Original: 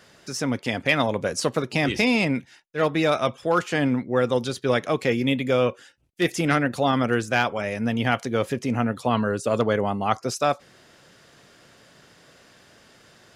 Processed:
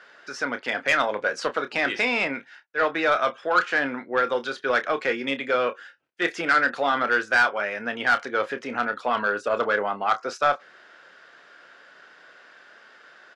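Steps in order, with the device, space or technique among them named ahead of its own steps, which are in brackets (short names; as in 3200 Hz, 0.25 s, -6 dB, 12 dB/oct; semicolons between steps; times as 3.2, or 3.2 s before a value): intercom (BPF 440–3800 Hz; bell 1500 Hz +10.5 dB 0.53 oct; soft clip -12 dBFS, distortion -15 dB; doubler 29 ms -10.5 dB)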